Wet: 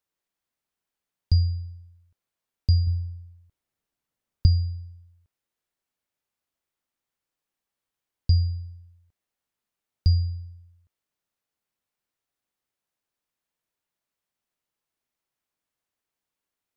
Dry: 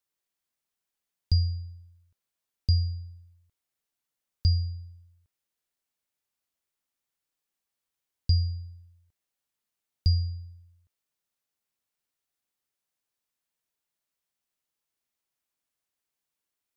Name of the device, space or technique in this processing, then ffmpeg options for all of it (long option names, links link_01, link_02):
behind a face mask: -filter_complex "[0:a]highshelf=frequency=2900:gain=-7,asettb=1/sr,asplit=3[link_01][link_02][link_03];[link_01]atrim=end=2.874[link_04];[link_02]atrim=start=2.87:end=4.46,asetpts=PTS-STARTPTS,afade=type=in:duration=0.004:curve=qsin,afade=type=out:start_time=1.586:duration=0.004:curve=qsin,lowshelf=frequency=360:gain=6[link_05];[link_03]atrim=start=4.456[link_06];[link_04][link_05]acrossfade=duration=0.004:curve1=hsin:curve2=qsin[link_07];[link_07][link_06]acrossfade=duration=0.004:curve1=qsin:curve2=hsin,volume=3.5dB"